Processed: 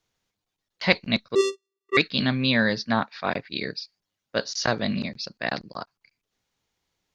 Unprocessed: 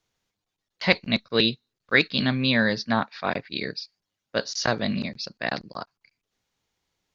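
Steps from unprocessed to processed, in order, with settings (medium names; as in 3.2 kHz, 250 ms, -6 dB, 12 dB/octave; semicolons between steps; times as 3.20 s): 1.35–1.97 s: vocoder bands 4, square 390 Hz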